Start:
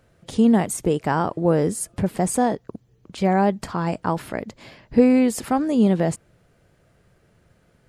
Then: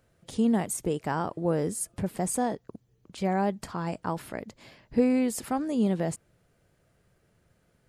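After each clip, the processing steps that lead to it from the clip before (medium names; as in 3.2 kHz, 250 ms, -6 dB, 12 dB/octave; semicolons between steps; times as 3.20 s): treble shelf 6.7 kHz +6 dB; trim -8 dB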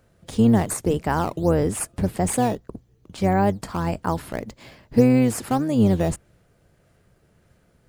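octave divider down 1 oct, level -5 dB; in parallel at -9 dB: decimation with a swept rate 8×, swing 160% 1.7 Hz; on the sum: trim +4 dB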